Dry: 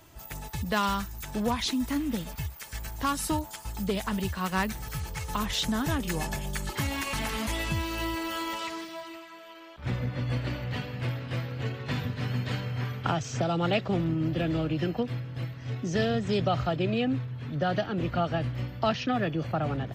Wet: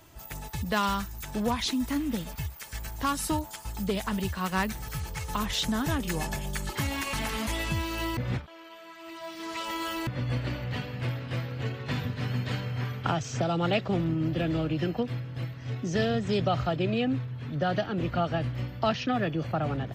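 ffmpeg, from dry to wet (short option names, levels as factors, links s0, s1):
-filter_complex "[0:a]asplit=3[s0][s1][s2];[s0]atrim=end=8.172[s3];[s1]atrim=start=8.168:end=10.072,asetpts=PTS-STARTPTS,areverse[s4];[s2]atrim=start=10.068[s5];[s3][s4]acrossfade=d=0.004:c1=hsin:c2=hsin[s6];[s6][s5]acrossfade=d=0.004:c1=hsin:c2=hsin"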